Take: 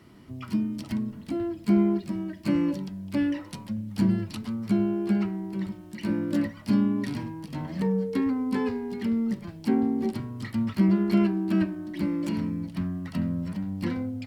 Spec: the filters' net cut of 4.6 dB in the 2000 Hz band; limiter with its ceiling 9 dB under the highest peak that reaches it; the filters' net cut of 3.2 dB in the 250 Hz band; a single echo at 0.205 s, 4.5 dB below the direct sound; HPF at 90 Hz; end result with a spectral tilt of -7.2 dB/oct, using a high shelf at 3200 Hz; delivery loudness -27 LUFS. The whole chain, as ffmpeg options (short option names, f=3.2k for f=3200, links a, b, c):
-af "highpass=90,equalizer=f=250:t=o:g=-4,equalizer=f=2k:t=o:g=-7,highshelf=f=3.2k:g=4,alimiter=limit=-23dB:level=0:latency=1,aecho=1:1:205:0.596,volume=5dB"